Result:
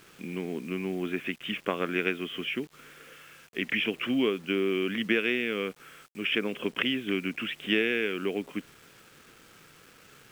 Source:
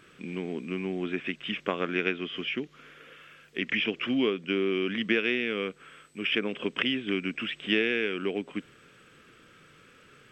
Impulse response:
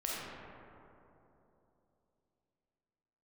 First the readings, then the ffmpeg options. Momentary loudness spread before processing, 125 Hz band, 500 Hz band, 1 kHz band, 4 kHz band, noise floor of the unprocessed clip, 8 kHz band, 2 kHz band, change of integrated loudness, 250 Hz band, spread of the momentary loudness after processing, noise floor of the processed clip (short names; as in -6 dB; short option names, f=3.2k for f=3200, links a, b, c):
12 LU, 0.0 dB, 0.0 dB, 0.0 dB, -0.5 dB, -57 dBFS, n/a, 0.0 dB, 0.0 dB, 0.0 dB, 13 LU, -56 dBFS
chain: -af "equalizer=f=4.6k:t=o:w=0.33:g=-8.5,acrusher=bits=8:mix=0:aa=0.000001"